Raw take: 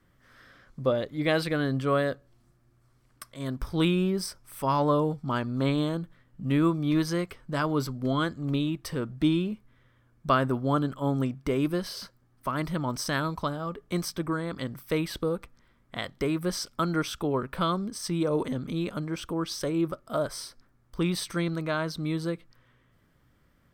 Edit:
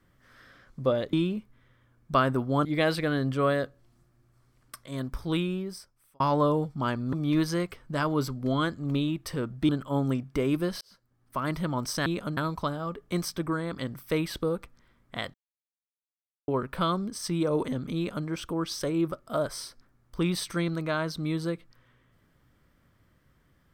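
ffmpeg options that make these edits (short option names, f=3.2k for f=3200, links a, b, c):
-filter_complex "[0:a]asplit=11[a][b][c][d][e][f][g][h][i][j][k];[a]atrim=end=1.132[l];[b]atrim=start=9.278:end=10.802[m];[c]atrim=start=1.128:end=4.68,asetpts=PTS-STARTPTS,afade=t=out:st=2.272:d=1.28[n];[d]atrim=start=4.68:end=5.612,asetpts=PTS-STARTPTS,afade=t=in:d=0.004:c=hsin[o];[e]atrim=start=6.718:end=9.282[p];[f]atrim=start=10.798:end=11.92,asetpts=PTS-STARTPTS,afade=t=out:st=1.118:d=0.004:c=hsin[q];[g]atrim=start=11.92:end=13.172,asetpts=PTS-STARTPTS,afade=t=in:d=0.63[r];[h]atrim=start=18.758:end=19.072[s];[i]atrim=start=13.168:end=16.14,asetpts=PTS-STARTPTS,afade=t=out:st=2.968:d=0.004:c=hsin[t];[j]atrim=start=16.14:end=17.28,asetpts=PTS-STARTPTS,volume=0[u];[k]atrim=start=17.28,asetpts=PTS-STARTPTS,afade=t=in:d=0.004:c=hsin[v];[l][m]acrossfade=d=0.004:c1=hsin:c2=hsin[w];[n][o]concat=n=2:v=0:a=1[x];[w][x]acrossfade=d=0.004:c1=hsin:c2=hsin[y];[y][p]acrossfade=d=0.004:c1=hsin:c2=hsin[z];[q][r]concat=n=2:v=0:a=1[aa];[z][aa]acrossfade=d=0.004:c1=hsin:c2=hsin[ab];[ab][s]acrossfade=d=0.004:c1=hsin:c2=hsin[ac];[t][u][v]concat=n=3:v=0:a=1[ad];[ac][ad]acrossfade=d=0.004:c1=hsin:c2=hsin"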